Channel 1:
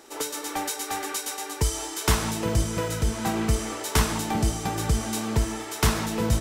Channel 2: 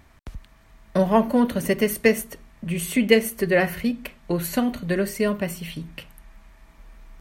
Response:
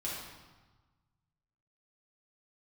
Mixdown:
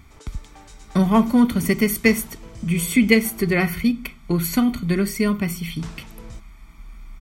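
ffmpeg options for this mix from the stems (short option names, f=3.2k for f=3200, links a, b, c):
-filter_complex "[0:a]lowpass=f=8.4k:w=0.5412,lowpass=f=8.4k:w=1.3066,volume=-17.5dB,asplit=3[a][b][c];[a]atrim=end=3.53,asetpts=PTS-STARTPTS,afade=t=out:st=3.526:d=0.004:c=hsin[d];[b]atrim=start=3.53:end=5.79,asetpts=PTS-STARTPTS,volume=0[e];[c]atrim=start=5.79,asetpts=PTS-STARTPTS,afade=t=in:d=0.004:c=hsin[f];[d][e][f]concat=n=3:v=0:a=1[g];[1:a]equalizer=f=940:t=o:w=0.45:g=-6.5,aecho=1:1:0.9:0.74,volume=2dB[h];[g][h]amix=inputs=2:normalize=0"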